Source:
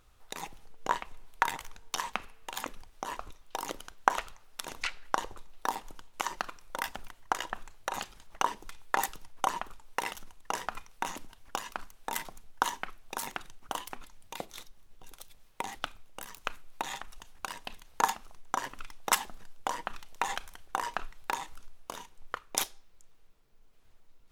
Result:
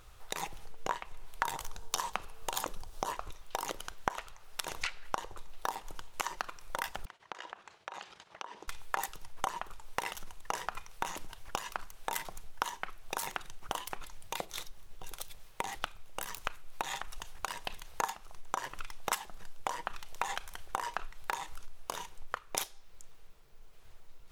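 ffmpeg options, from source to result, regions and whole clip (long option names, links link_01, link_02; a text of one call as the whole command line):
ffmpeg -i in.wav -filter_complex "[0:a]asettb=1/sr,asplit=3[link_01][link_02][link_03];[link_01]atrim=end=1.434[link_04];[link_02]atrim=start=1.43:end=3.12,asetpts=PTS-STARTPTS,afade=type=in:duration=0.004:curve=qsin,afade=type=out:start_time=1.686:duration=0.004:curve=qsin,equalizer=frequency=2100:width=1.3:gain=-9,acontrast=61[link_05];[link_03]atrim=start=3.116[link_06];[link_04][link_05]acrossfade=duration=0.004:curve1=hsin:curve2=qsin[link_07];[link_07][link_06]acrossfade=duration=0.004:curve1=qsin:curve2=hsin,asettb=1/sr,asplit=3[link_08][link_09][link_10];[link_08]atrim=end=7.054[link_11];[link_09]atrim=start=7.05:end=8.68,asetpts=PTS-STARTPTS,afade=type=in:duration=0.004:curve=qsin,afade=type=out:start_time=1.626:duration=0.004:curve=qsin,agate=range=-33dB:threshold=-49dB:ratio=3:release=100:detection=peak,acompressor=threshold=-45dB:ratio=16:attack=3.2:release=140:knee=1:detection=peak,highpass=210,lowpass=5000[link_12];[link_10]atrim=start=8.676[link_13];[link_11][link_12]acrossfade=duration=0.004:curve1=hsin:curve2=qsin[link_14];[link_14][link_13]acrossfade=duration=0.004:curve1=qsin:curve2=hsin,equalizer=frequency=250:width_type=o:width=0.34:gain=-13.5,acompressor=threshold=-42dB:ratio=3,volume=7.5dB" out.wav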